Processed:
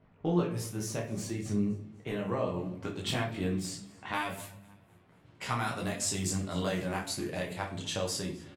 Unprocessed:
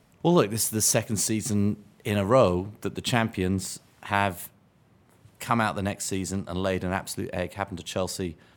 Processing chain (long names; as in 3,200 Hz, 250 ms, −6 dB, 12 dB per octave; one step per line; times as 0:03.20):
downward compressor 2.5 to 1, threshold −29 dBFS, peak gain reduction 10.5 dB
parametric band 9,000 Hz −3.5 dB 1.1 octaves
low-pass that shuts in the quiet parts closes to 2,500 Hz, open at −28 dBFS
high-shelf EQ 3,700 Hz −8 dB, from 0:02.54 +2 dB, from 0:04.13 +10.5 dB
repeating echo 254 ms, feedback 45%, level −23 dB
rectangular room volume 76 cubic metres, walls mixed, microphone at 0.53 metres
micro pitch shift up and down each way 11 cents